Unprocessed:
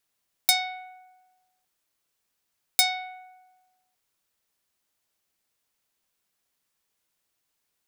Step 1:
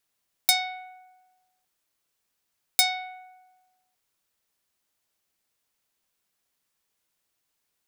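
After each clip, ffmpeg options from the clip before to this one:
ffmpeg -i in.wav -af anull out.wav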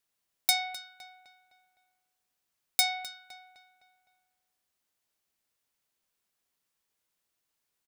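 ffmpeg -i in.wav -filter_complex "[0:a]asplit=2[link_01][link_02];[link_02]adelay=256,lowpass=frequency=3500:poles=1,volume=-12dB,asplit=2[link_03][link_04];[link_04]adelay=256,lowpass=frequency=3500:poles=1,volume=0.49,asplit=2[link_05][link_06];[link_06]adelay=256,lowpass=frequency=3500:poles=1,volume=0.49,asplit=2[link_07][link_08];[link_08]adelay=256,lowpass=frequency=3500:poles=1,volume=0.49,asplit=2[link_09][link_10];[link_10]adelay=256,lowpass=frequency=3500:poles=1,volume=0.49[link_11];[link_01][link_03][link_05][link_07][link_09][link_11]amix=inputs=6:normalize=0,volume=-4dB" out.wav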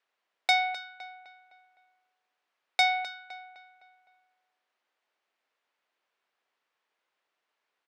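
ffmpeg -i in.wav -af "highpass=460,lowpass=2500,volume=8.5dB" out.wav

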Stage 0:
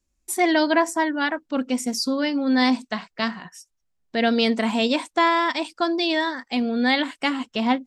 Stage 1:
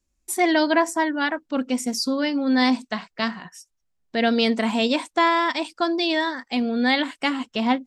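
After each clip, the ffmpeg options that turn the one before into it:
ffmpeg -i in.wav -af anull out.wav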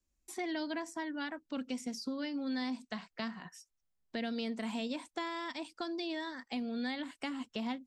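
ffmpeg -i in.wav -filter_complex "[0:a]acrossover=split=230|2100|5700[link_01][link_02][link_03][link_04];[link_01]acompressor=threshold=-33dB:ratio=4[link_05];[link_02]acompressor=threshold=-34dB:ratio=4[link_06];[link_03]acompressor=threshold=-40dB:ratio=4[link_07];[link_04]acompressor=threshold=-50dB:ratio=4[link_08];[link_05][link_06][link_07][link_08]amix=inputs=4:normalize=0,volume=-7.5dB" out.wav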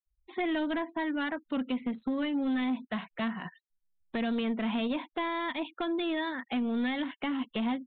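ffmpeg -i in.wav -af "afftfilt=real='re*gte(hypot(re,im),0.00112)':imag='im*gte(hypot(re,im),0.00112)':win_size=1024:overlap=0.75,aeval=exprs='0.075*(cos(1*acos(clip(val(0)/0.075,-1,1)))-cos(1*PI/2))+0.0266*(cos(5*acos(clip(val(0)/0.075,-1,1)))-cos(5*PI/2))':channel_layout=same,aresample=8000,aresample=44100" out.wav

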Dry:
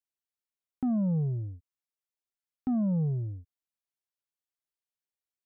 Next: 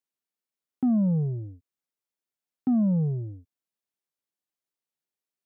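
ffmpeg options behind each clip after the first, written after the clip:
ffmpeg -i in.wav -af "highpass=210,lowshelf=frequency=320:gain=11.5" out.wav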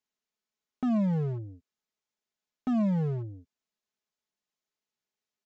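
ffmpeg -i in.wav -af "aresample=16000,volume=29dB,asoftclip=hard,volume=-29dB,aresample=44100,aecho=1:1:4.7:0.45,volume=2dB" out.wav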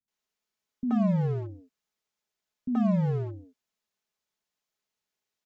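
ffmpeg -i in.wav -filter_complex "[0:a]acrossover=split=240|630|1800[link_01][link_02][link_03][link_04];[link_04]alimiter=level_in=28.5dB:limit=-24dB:level=0:latency=1,volume=-28.5dB[link_05];[link_01][link_02][link_03][link_05]amix=inputs=4:normalize=0,acrossover=split=260[link_06][link_07];[link_07]adelay=80[link_08];[link_06][link_08]amix=inputs=2:normalize=0,volume=3.5dB" out.wav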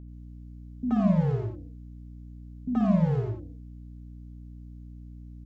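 ffmpeg -i in.wav -af "aecho=1:1:55.39|90.38:0.501|0.501,aeval=exprs='val(0)+0.00794*(sin(2*PI*60*n/s)+sin(2*PI*2*60*n/s)/2+sin(2*PI*3*60*n/s)/3+sin(2*PI*4*60*n/s)/4+sin(2*PI*5*60*n/s)/5)':channel_layout=same" out.wav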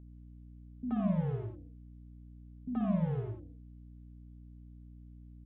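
ffmpeg -i in.wav -af "aresample=8000,aresample=44100,volume=-8dB" out.wav

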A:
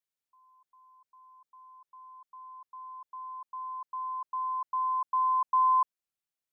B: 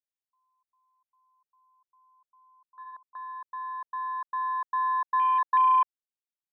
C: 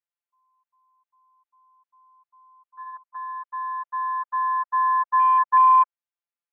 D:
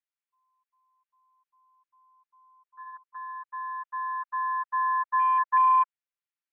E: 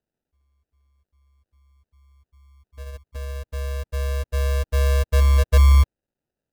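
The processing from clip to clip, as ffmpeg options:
ffmpeg -i in.wav -af "afwtdn=0.0178,volume=3dB" out.wav
ffmpeg -i in.wav -filter_complex "[0:a]acrossover=split=2700[link_01][link_02];[link_02]acompressor=threshold=-57dB:ratio=4:attack=1:release=60[link_03];[link_01][link_03]amix=inputs=2:normalize=0,acrossover=split=540 2800:gain=0.0708 1 0.0708[link_04][link_05][link_06];[link_04][link_05][link_06]amix=inputs=3:normalize=0,afftfilt=real='hypot(re,im)*cos(PI*b)':imag='0':win_size=1024:overlap=0.75,volume=7dB" out.wav
ffmpeg -i in.wav -af "bandpass=frequency=2000:width_type=q:width=1.1:csg=0" out.wav
ffmpeg -i in.wav -af "acrusher=samples=40:mix=1:aa=0.000001,volume=8dB" out.wav

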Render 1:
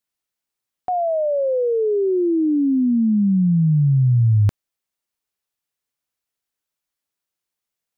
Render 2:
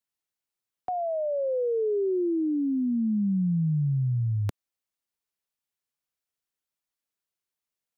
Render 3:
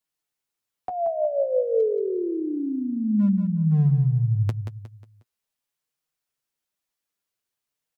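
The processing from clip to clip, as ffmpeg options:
ffmpeg -i in.wav -filter_complex "[0:a]acrossover=split=170|420[link_01][link_02][link_03];[link_01]acompressor=threshold=-24dB:ratio=4[link_04];[link_02]acompressor=threshold=-24dB:ratio=4[link_05];[link_03]acompressor=threshold=-24dB:ratio=4[link_06];[link_04][link_05][link_06]amix=inputs=3:normalize=0,volume=-5.5dB" out.wav
ffmpeg -i in.wav -af "flanger=delay=6.3:depth=4.1:regen=28:speed=0.5:shape=sinusoidal,asoftclip=type=hard:threshold=-23dB,aecho=1:1:180|360|540|720:0.398|0.155|0.0606|0.0236,volume=7dB" out.wav

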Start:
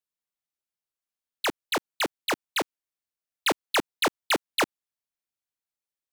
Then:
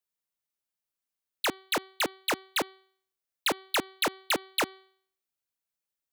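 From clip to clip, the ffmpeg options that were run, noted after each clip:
ffmpeg -i in.wav -af "highshelf=frequency=11000:gain=5,bandreject=frequency=381.5:width_type=h:width=4,bandreject=frequency=763:width_type=h:width=4,bandreject=frequency=1144.5:width_type=h:width=4,bandreject=frequency=1526:width_type=h:width=4,bandreject=frequency=1907.5:width_type=h:width=4,bandreject=frequency=2289:width_type=h:width=4,bandreject=frequency=2670.5:width_type=h:width=4,bandreject=frequency=3052:width_type=h:width=4,bandreject=frequency=3433.5:width_type=h:width=4,bandreject=frequency=3815:width_type=h:width=4,bandreject=frequency=4196.5:width_type=h:width=4,bandreject=frequency=4578:width_type=h:width=4,acompressor=threshold=-25dB:ratio=6" out.wav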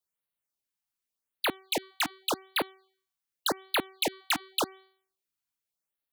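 ffmpeg -i in.wav -af "afftfilt=real='re*(1-between(b*sr/1024,450*pow(6800/450,0.5+0.5*sin(2*PI*0.87*pts/sr))/1.41,450*pow(6800/450,0.5+0.5*sin(2*PI*0.87*pts/sr))*1.41))':imag='im*(1-between(b*sr/1024,450*pow(6800/450,0.5+0.5*sin(2*PI*0.87*pts/sr))/1.41,450*pow(6800/450,0.5+0.5*sin(2*PI*0.87*pts/sr))*1.41))':win_size=1024:overlap=0.75" out.wav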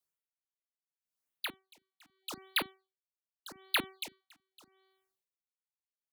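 ffmpeg -i in.wav -filter_complex "[0:a]acrossover=split=220|1300|7100[link_01][link_02][link_03][link_04];[link_01]asplit=2[link_05][link_06];[link_06]adelay=37,volume=-9dB[link_07];[link_05][link_07]amix=inputs=2:normalize=0[link_08];[link_02]asoftclip=type=tanh:threshold=-36.5dB[link_09];[link_08][link_09][link_03][link_04]amix=inputs=4:normalize=0,aeval=exprs='val(0)*pow(10,-36*(0.5-0.5*cos(2*PI*0.79*n/s))/20)':channel_layout=same" out.wav

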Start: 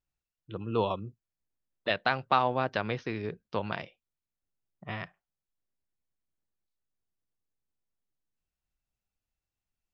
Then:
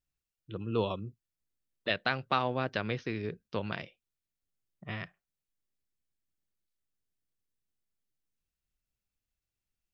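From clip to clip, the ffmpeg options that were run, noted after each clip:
ffmpeg -i in.wav -af "equalizer=frequency=860:width=1.3:gain=-7" out.wav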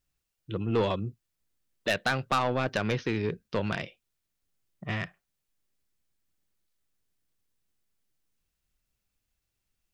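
ffmpeg -i in.wav -af "asoftclip=type=tanh:threshold=-26.5dB,volume=7.5dB" out.wav

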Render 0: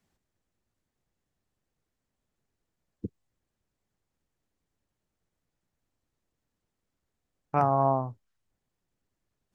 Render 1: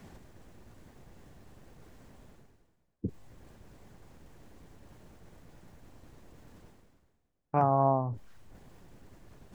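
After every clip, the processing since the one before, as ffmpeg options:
ffmpeg -i in.wav -af "highshelf=frequency=2000:gain=-10.5,bandreject=frequency=1300:width=25,areverse,acompressor=mode=upward:threshold=-29dB:ratio=2.5,areverse" out.wav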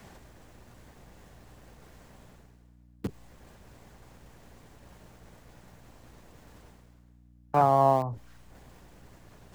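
ffmpeg -i in.wav -filter_complex "[0:a]aeval=exprs='val(0)+0.002*(sin(2*PI*60*n/s)+sin(2*PI*2*60*n/s)/2+sin(2*PI*3*60*n/s)/3+sin(2*PI*4*60*n/s)/4+sin(2*PI*5*60*n/s)/5)':channel_layout=same,acrossover=split=250|330|1200[link_01][link_02][link_03][link_04];[link_02]acrusher=bits=4:dc=4:mix=0:aa=0.000001[link_05];[link_01][link_05][link_03][link_04]amix=inputs=4:normalize=0,lowshelf=frequency=160:gain=-8.5,volume=5dB" out.wav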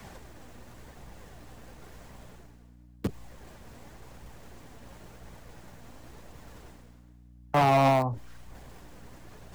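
ffmpeg -i in.wav -filter_complex "[0:a]flanger=delay=0.8:depth=3.7:regen=71:speed=0.94:shape=triangular,acrossover=split=290|3800[link_01][link_02][link_03];[link_02]asoftclip=type=hard:threshold=-28dB[link_04];[link_01][link_04][link_03]amix=inputs=3:normalize=0,volume=8.5dB" out.wav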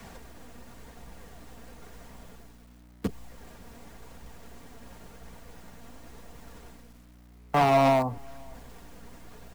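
ffmpeg -i in.wav -filter_complex "[0:a]aecho=1:1:4.3:0.36,acrusher=bits=9:mix=0:aa=0.000001,asplit=2[link_01][link_02];[link_02]adelay=536.4,volume=-28dB,highshelf=frequency=4000:gain=-12.1[link_03];[link_01][link_03]amix=inputs=2:normalize=0" out.wav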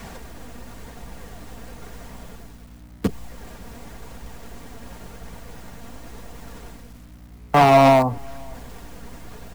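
ffmpeg -i in.wav -af "aeval=exprs='val(0)+0.00178*(sin(2*PI*50*n/s)+sin(2*PI*2*50*n/s)/2+sin(2*PI*3*50*n/s)/3+sin(2*PI*4*50*n/s)/4+sin(2*PI*5*50*n/s)/5)':channel_layout=same,volume=8dB" out.wav

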